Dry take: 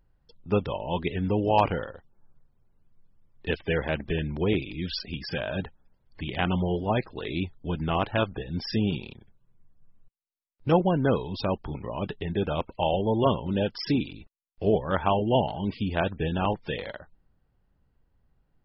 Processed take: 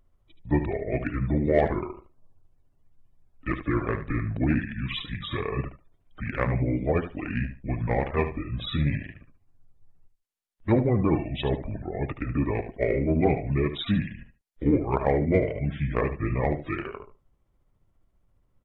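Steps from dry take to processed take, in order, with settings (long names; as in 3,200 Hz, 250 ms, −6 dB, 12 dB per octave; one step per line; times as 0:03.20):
pitch shift by two crossfaded delay taps −6 semitones
in parallel at −9.5 dB: soft clipping −23.5 dBFS, distortion −10 dB
on the sum: repeating echo 74 ms, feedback 18%, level −10.5 dB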